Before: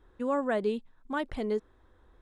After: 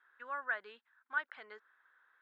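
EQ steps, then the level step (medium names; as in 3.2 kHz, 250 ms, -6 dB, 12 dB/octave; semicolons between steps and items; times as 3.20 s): dynamic bell 2.1 kHz, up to -4 dB, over -45 dBFS, Q 0.71; ladder band-pass 1.7 kHz, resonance 65%; distance through air 79 m; +9.5 dB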